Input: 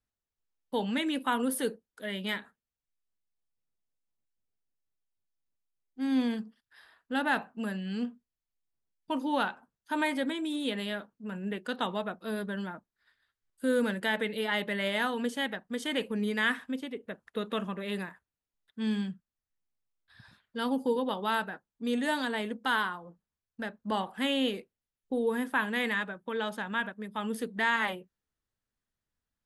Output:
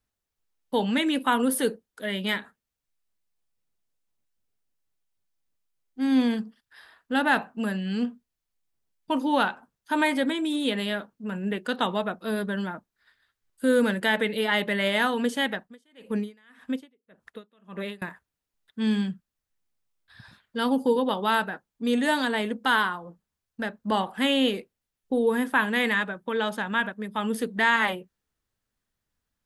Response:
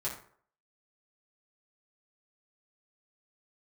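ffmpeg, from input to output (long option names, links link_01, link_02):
-filter_complex "[0:a]asettb=1/sr,asplit=3[link_01][link_02][link_03];[link_01]atrim=end=15.604[link_04];[link_02]atrim=start=15.6:end=18.02,asetpts=PTS-STARTPTS,afade=type=in:duration=0.004:curve=qsin,afade=type=out:start_time=2.416:duration=0.004:curve=qsin,aeval=exprs='val(0)*pow(10,-38*(0.5-0.5*cos(2*PI*1.8*n/s))/20)':channel_layout=same[link_05];[link_03]atrim=start=18.016[link_06];[link_04][link_05]acrossfade=duration=0.004:curve1=hsin:curve2=qsin[link_07];[link_07][link_06]acrossfade=duration=0.004:curve1=qsin:curve2=hsin,volume=6dB"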